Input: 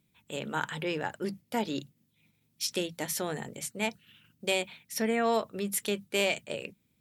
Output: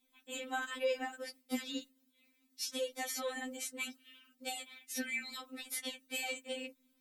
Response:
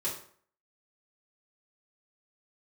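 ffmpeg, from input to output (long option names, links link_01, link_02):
-filter_complex "[0:a]acrossover=split=400|1400|6600[link_01][link_02][link_03][link_04];[link_01]acompressor=threshold=-36dB:ratio=4[link_05];[link_02]acompressor=threshold=-40dB:ratio=4[link_06];[link_03]acompressor=threshold=-41dB:ratio=4[link_07];[link_04]acompressor=threshold=-44dB:ratio=4[link_08];[link_05][link_06][link_07][link_08]amix=inputs=4:normalize=0,afftfilt=real='re*3.46*eq(mod(b,12),0)':imag='im*3.46*eq(mod(b,12),0)':win_size=2048:overlap=0.75,volume=2.5dB"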